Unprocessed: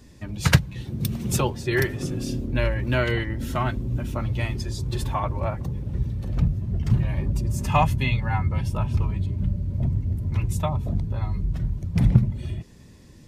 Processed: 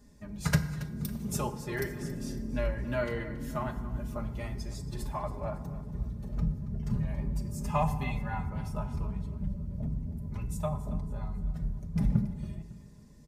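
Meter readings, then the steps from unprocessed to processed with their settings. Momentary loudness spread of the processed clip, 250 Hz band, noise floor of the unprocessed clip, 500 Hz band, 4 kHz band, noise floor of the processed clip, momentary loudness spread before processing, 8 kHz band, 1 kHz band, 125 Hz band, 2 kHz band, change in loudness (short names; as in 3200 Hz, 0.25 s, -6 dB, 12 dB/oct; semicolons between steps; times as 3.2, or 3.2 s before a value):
8 LU, -6.5 dB, -47 dBFS, -7.0 dB, -13.5 dB, -50 dBFS, 8 LU, -8.5 dB, -8.5 dB, -11.0 dB, -11.0 dB, -9.5 dB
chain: bell 2900 Hz -8.5 dB 1.4 oct; notch 380 Hz, Q 12; comb 4.9 ms, depth 67%; feedback echo 0.277 s, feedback 42%, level -16 dB; FDN reverb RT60 1.2 s, high-frequency decay 0.6×, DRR 8.5 dB; gain -9 dB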